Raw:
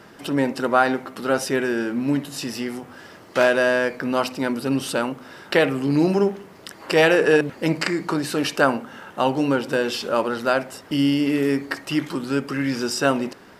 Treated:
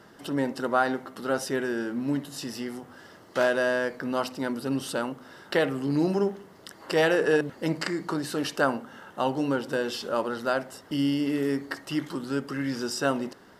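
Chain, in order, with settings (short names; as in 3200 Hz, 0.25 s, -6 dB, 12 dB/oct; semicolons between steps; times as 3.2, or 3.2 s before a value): bell 2400 Hz -10 dB 0.21 oct; gain -6 dB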